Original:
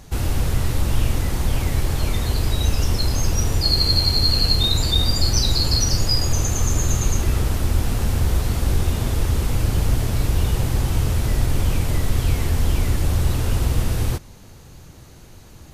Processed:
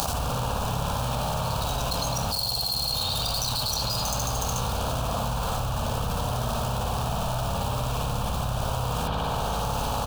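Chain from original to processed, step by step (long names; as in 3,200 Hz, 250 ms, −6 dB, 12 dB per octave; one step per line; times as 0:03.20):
running median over 25 samples
high-pass filter 320 Hz 6 dB per octave
tilt shelving filter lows −9.5 dB, about 1,300 Hz
phaser with its sweep stopped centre 840 Hz, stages 4
time stretch by overlap-add 0.64×, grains 29 ms
repeating echo 395 ms, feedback 59%, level −19.5 dB
spring reverb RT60 1.2 s, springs 56 ms, chirp 50 ms, DRR −7.5 dB
envelope flattener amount 100%
level −4 dB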